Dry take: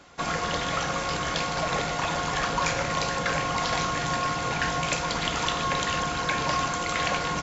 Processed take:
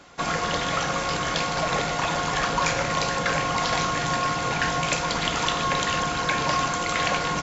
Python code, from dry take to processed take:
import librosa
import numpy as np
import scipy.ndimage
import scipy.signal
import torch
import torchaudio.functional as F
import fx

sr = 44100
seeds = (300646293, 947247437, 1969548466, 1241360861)

y = fx.peak_eq(x, sr, hz=70.0, db=-4.0, octaves=0.73)
y = y * librosa.db_to_amplitude(2.5)